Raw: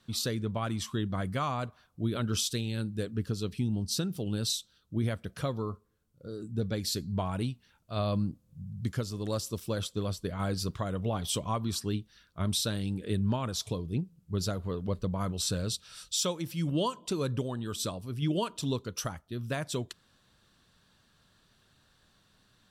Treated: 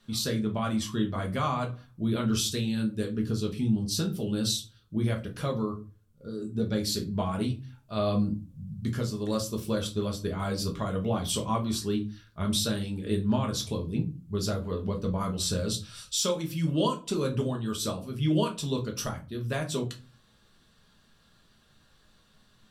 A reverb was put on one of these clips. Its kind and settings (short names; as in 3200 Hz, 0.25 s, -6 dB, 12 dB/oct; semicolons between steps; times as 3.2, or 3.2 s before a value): shoebox room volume 130 m³, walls furnished, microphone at 1.3 m